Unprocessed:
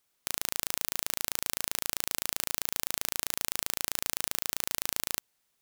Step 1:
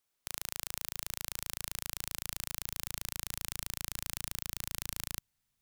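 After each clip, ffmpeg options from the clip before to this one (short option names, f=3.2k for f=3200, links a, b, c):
-af "asubboost=boost=8:cutoff=150,volume=-6.5dB"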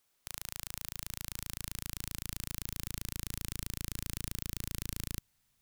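-af "asoftclip=type=tanh:threshold=-18dB,volume=6.5dB"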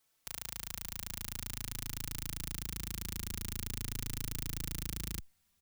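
-filter_complex "[0:a]asplit=2[a][b];[b]adelay=4.1,afreqshift=0.44[c];[a][c]amix=inputs=2:normalize=1,volume=3dB"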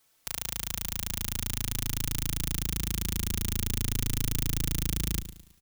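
-af "aecho=1:1:108|216|324|432:0.224|0.0918|0.0376|0.0154,volume=8dB"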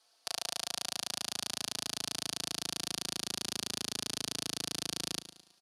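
-af "highpass=390,equalizer=f=700:t=q:w=4:g=8,equalizer=f=2.1k:t=q:w=4:g=-7,equalizer=f=4.6k:t=q:w=4:g=9,equalizer=f=7.6k:t=q:w=4:g=-8,lowpass=f=9.9k:w=0.5412,lowpass=f=9.9k:w=1.3066"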